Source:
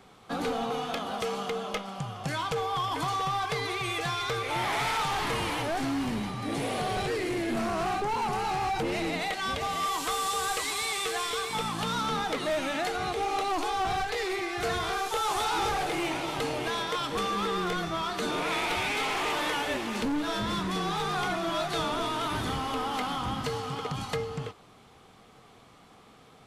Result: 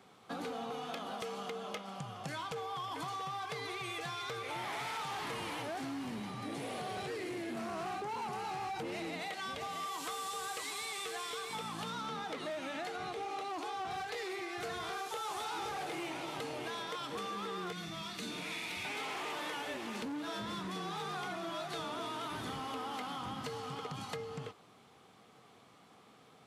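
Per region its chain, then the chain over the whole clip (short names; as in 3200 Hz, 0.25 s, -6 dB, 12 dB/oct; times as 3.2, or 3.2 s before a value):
11.9–13.91 HPF 47 Hz + high shelf 8100 Hz -6 dB
17.72–18.85 band shelf 740 Hz -10 dB 2.5 oct + notch 3100 Hz, Q 15 + flutter echo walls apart 7.6 m, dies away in 0.33 s
whole clip: HPF 120 Hz 12 dB/oct; compressor, threshold -32 dBFS; gain -5.5 dB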